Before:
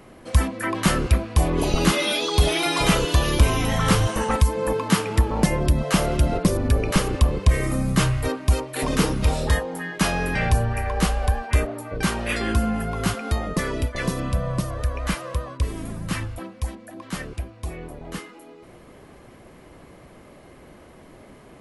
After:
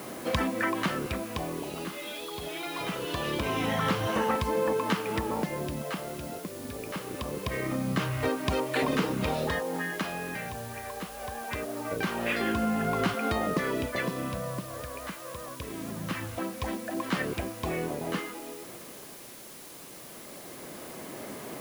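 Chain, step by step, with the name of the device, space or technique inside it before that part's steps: medium wave at night (BPF 170–3700 Hz; compressor, threshold -32 dBFS, peak gain reduction 16.5 dB; tremolo 0.23 Hz, depth 74%; whine 10000 Hz -62 dBFS; white noise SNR 16 dB); gain +7.5 dB

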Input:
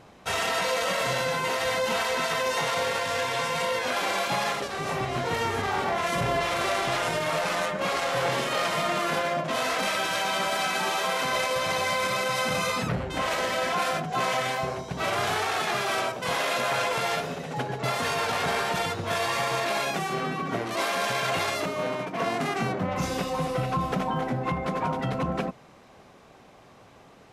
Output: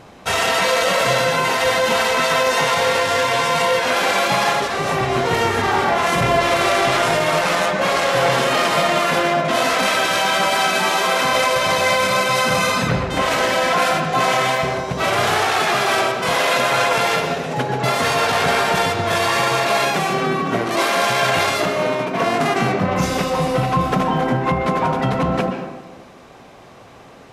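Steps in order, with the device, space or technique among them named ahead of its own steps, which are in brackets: filtered reverb send (on a send: HPF 200 Hz 12 dB/oct + LPF 5800 Hz + reverb RT60 1.1 s, pre-delay 0.119 s, DRR 6 dB); on the sum: gain +8.5 dB

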